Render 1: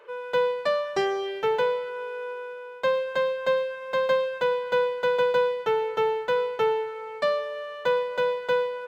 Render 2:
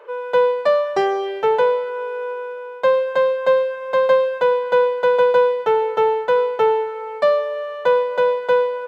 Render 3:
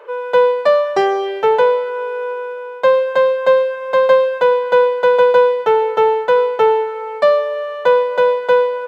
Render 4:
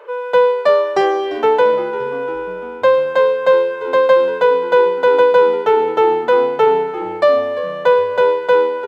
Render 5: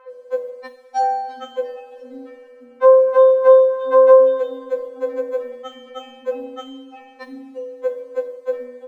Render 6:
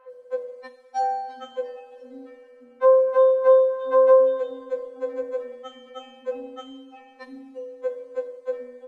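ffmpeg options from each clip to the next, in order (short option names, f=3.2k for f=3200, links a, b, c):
-af "equalizer=f=700:t=o:w=2.2:g=9.5"
-af "lowshelf=f=150:g=-4,volume=4dB"
-filter_complex "[0:a]asplit=5[a][b][c][d][e];[b]adelay=345,afreqshift=-85,volume=-16dB[f];[c]adelay=690,afreqshift=-170,volume=-22dB[g];[d]adelay=1035,afreqshift=-255,volume=-28dB[h];[e]adelay=1380,afreqshift=-340,volume=-34.1dB[i];[a][f][g][h][i]amix=inputs=5:normalize=0"
-af "afftfilt=real='re*3.46*eq(mod(b,12),0)':imag='im*3.46*eq(mod(b,12),0)':win_size=2048:overlap=0.75,volume=-4.5dB"
-af "volume=-5.5dB" -ar 48000 -c:a libopus -b:a 32k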